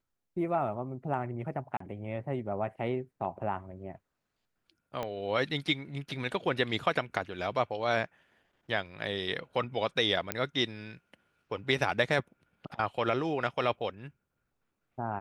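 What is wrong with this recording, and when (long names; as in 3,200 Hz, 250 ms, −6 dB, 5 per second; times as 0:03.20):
0:01.77–0:01.80: drop-out 34 ms
0:05.03: click −21 dBFS
0:10.32: click −12 dBFS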